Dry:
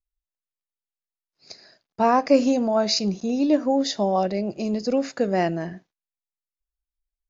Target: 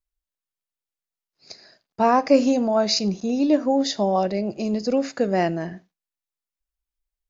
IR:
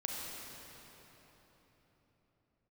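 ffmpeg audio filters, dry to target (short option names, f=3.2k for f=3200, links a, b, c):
-filter_complex "[0:a]asplit=2[a][b];[1:a]atrim=start_sample=2205,atrim=end_sample=4410[c];[b][c]afir=irnorm=-1:irlink=0,volume=-17.5dB[d];[a][d]amix=inputs=2:normalize=0"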